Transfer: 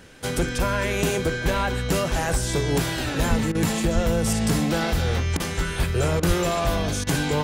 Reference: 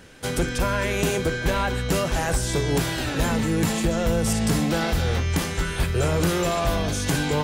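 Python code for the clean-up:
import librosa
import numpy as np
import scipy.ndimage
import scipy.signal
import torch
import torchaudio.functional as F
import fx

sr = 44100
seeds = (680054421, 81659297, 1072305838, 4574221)

y = fx.highpass(x, sr, hz=140.0, slope=24, at=(3.29, 3.41), fade=0.02)
y = fx.highpass(y, sr, hz=140.0, slope=24, at=(3.94, 4.06), fade=0.02)
y = fx.highpass(y, sr, hz=140.0, slope=24, at=(6.27, 6.39), fade=0.02)
y = fx.fix_interpolate(y, sr, at_s=(3.52, 5.37, 6.2, 7.04), length_ms=28.0)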